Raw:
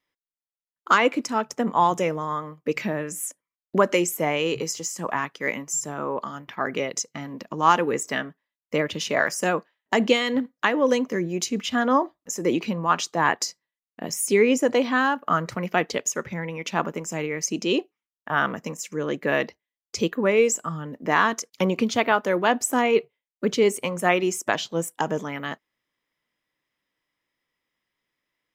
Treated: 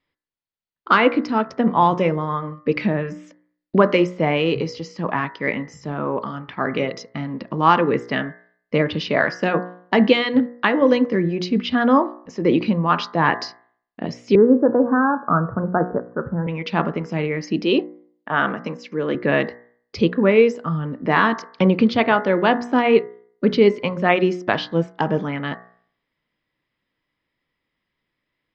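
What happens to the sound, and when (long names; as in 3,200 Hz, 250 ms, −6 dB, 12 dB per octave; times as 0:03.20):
0:14.35–0:16.47: Butterworth low-pass 1,600 Hz 96 dB per octave
0:17.61–0:19.15: high-pass filter 210 Hz
whole clip: elliptic low-pass filter 4,700 Hz, stop band 60 dB; low-shelf EQ 310 Hz +9.5 dB; hum removal 60.09 Hz, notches 35; level +3 dB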